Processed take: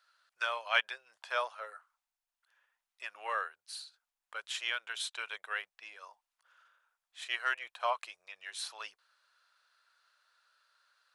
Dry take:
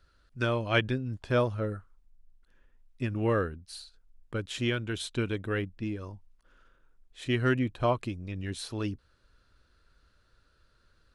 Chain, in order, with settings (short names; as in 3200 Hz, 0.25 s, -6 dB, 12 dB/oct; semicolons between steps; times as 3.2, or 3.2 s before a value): inverse Chebyshev high-pass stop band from 290 Hz, stop band 50 dB